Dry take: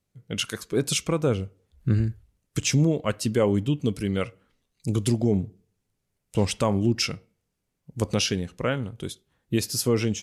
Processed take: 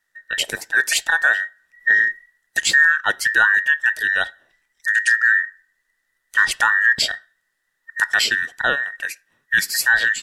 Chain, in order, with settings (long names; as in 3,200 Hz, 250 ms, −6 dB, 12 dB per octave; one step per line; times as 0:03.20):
frequency inversion band by band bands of 2,000 Hz
0:04.89–0:05.39: linear-phase brick-wall band-pass 1,300–11,000 Hz
level +6 dB